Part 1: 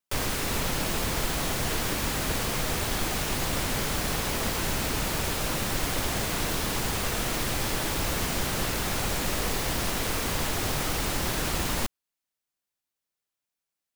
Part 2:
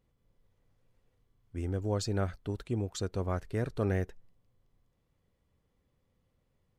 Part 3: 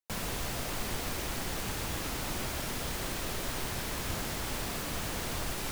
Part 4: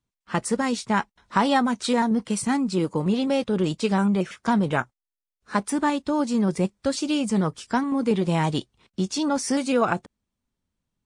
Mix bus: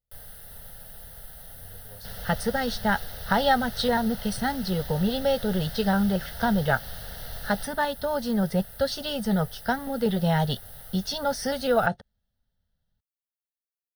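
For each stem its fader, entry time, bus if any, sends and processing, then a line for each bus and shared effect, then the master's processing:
-19.0 dB, 0.00 s, no send, resonant high shelf 7000 Hz +10.5 dB, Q 1.5
-16.0 dB, 0.00 s, no send, tone controls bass -1 dB, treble +12 dB
-4.5 dB, 1.95 s, no send, bit-crush 6-bit
+2.5 dB, 1.95 s, no send, dry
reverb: off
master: low shelf 75 Hz +6.5 dB; fixed phaser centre 1600 Hz, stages 8

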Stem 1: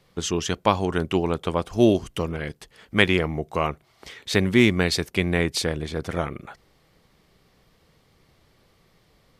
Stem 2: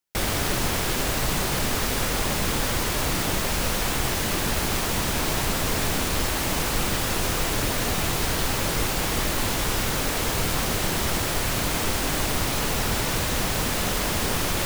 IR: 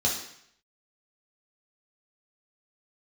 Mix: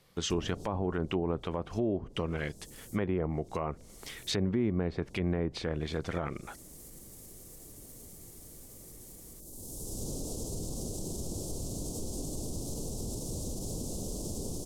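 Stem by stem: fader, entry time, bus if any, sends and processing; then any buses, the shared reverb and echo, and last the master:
-4.5 dB, 0.00 s, no send, dry
-6.5 dB, 0.15 s, no send, Chebyshev band-stop 410–7600 Hz, order 2; limiter -20 dBFS, peak gain reduction 6 dB; auto duck -16 dB, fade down 1.50 s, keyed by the first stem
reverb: off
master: treble ducked by the level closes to 850 Hz, closed at -22.5 dBFS; high shelf 7200 Hz +10.5 dB; limiter -21 dBFS, peak gain reduction 11.5 dB

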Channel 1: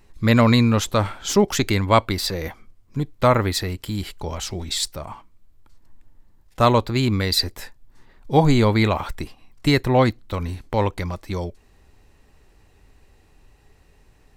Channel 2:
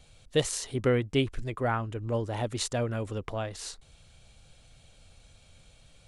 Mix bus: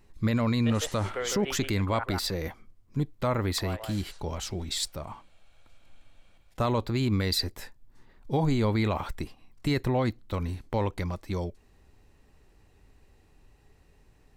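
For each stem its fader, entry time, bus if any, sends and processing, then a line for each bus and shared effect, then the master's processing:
-6.5 dB, 0.00 s, no send, no echo send, low shelf 350 Hz +5.5 dB
-1.5 dB, 0.30 s, muted 2.04–3.5, no send, echo send -4 dB, three-band isolator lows -23 dB, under 500 Hz, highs -13 dB, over 2800 Hz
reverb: off
echo: echo 0.156 s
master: low shelf 120 Hz -4.5 dB; limiter -17 dBFS, peak gain reduction 9 dB

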